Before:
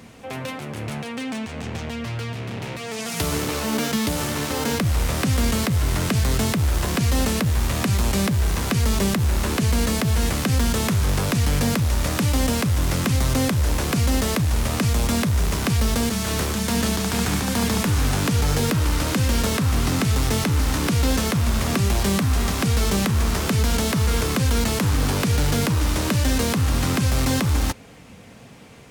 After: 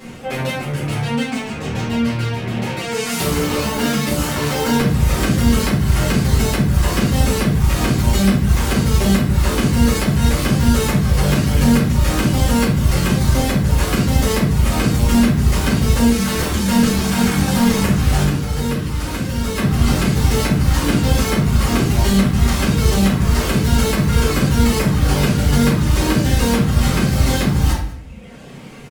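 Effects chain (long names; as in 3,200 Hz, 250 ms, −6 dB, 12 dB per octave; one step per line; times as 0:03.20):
reverb reduction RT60 1.4 s
in parallel at −0.5 dB: downward compressor, threshold −29 dBFS, peak gain reduction 11 dB
0:18.23–0:19.56: on the sum: tuned comb filter 89 Hz, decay 1.7 s, mix 60%
soft clipping −14 dBFS, distortion −20 dB
on a send: single-tap delay 193 ms −21.5 dB
on the sum: rectangular room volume 83 cubic metres, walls mixed, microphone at 2.3 metres
level −5 dB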